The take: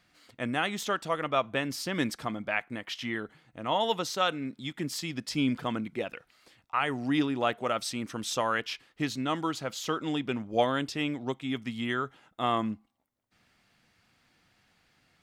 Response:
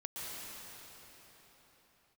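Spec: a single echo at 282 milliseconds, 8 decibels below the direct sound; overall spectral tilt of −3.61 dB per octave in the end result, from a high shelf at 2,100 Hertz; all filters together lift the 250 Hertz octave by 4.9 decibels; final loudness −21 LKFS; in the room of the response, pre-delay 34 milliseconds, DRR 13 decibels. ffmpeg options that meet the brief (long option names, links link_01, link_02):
-filter_complex "[0:a]equalizer=frequency=250:width_type=o:gain=5.5,highshelf=frequency=2100:gain=7.5,aecho=1:1:282:0.398,asplit=2[link_01][link_02];[1:a]atrim=start_sample=2205,adelay=34[link_03];[link_02][link_03]afir=irnorm=-1:irlink=0,volume=-14.5dB[link_04];[link_01][link_04]amix=inputs=2:normalize=0,volume=6dB"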